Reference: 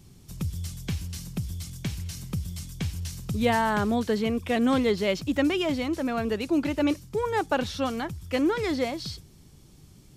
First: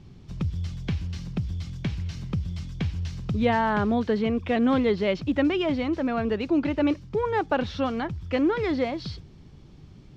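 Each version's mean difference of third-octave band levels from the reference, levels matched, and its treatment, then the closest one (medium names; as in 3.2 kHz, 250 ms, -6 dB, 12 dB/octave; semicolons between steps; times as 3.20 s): 5.0 dB: in parallel at -3 dB: compression, threshold -32 dBFS, peak gain reduction 13 dB; on the sum: distance through air 210 m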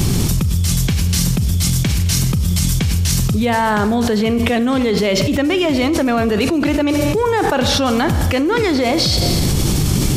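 8.5 dB: Schroeder reverb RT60 1 s, combs from 30 ms, DRR 12.5 dB; level flattener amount 100%; trim +4 dB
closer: first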